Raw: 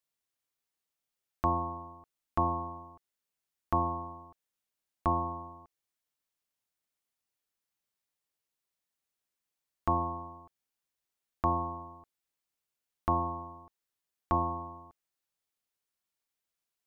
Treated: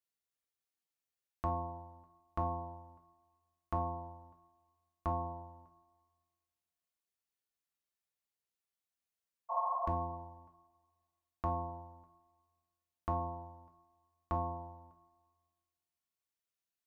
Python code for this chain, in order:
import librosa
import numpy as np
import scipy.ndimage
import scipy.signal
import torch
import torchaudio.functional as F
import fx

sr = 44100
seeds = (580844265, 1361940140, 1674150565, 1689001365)

y = fx.spec_repair(x, sr, seeds[0], start_s=9.53, length_s=0.33, low_hz=530.0, high_hz=1400.0, source='after')
y = fx.rev_double_slope(y, sr, seeds[1], early_s=0.32, late_s=1.7, knee_db=-20, drr_db=3.0)
y = y * 10.0 ** (-8.0 / 20.0)